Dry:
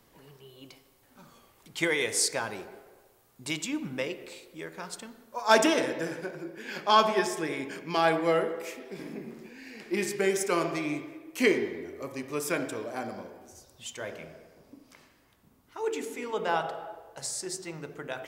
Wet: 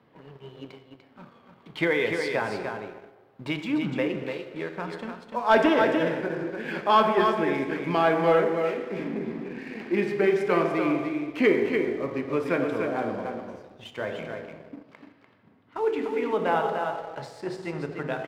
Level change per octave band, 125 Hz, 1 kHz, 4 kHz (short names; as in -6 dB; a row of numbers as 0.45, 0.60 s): +6.5, +3.5, -3.0 dB